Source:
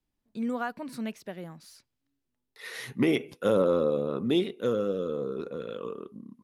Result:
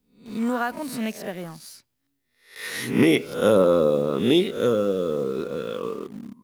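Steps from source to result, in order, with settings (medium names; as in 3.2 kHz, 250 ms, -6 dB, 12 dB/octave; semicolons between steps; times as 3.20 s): reverse spectral sustain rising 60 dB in 0.48 s; treble shelf 9.7 kHz +8.5 dB; in parallel at -11.5 dB: bit crusher 7-bit; on the sum: trim +3.5 dB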